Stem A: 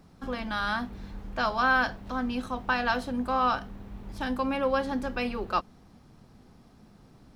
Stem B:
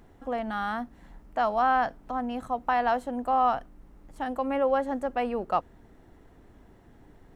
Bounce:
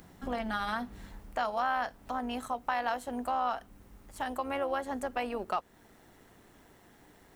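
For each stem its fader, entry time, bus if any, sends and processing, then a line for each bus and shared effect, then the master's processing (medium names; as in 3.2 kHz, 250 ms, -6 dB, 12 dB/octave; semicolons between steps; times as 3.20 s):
+1.5 dB, 0.00 s, no send, rotary cabinet horn 0.8 Hz; auto duck -14 dB, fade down 1.90 s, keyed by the second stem
+3.0 dB, 0.00 s, polarity flipped, no send, tilt EQ +3 dB/octave; AM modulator 190 Hz, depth 30%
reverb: none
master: compression 2:1, threshold -33 dBFS, peak gain reduction 8 dB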